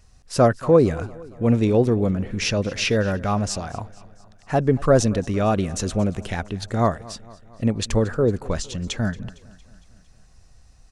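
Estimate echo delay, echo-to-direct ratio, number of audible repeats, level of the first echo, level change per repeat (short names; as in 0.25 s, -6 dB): 0.229 s, -19.0 dB, 4, -21.0 dB, -4.5 dB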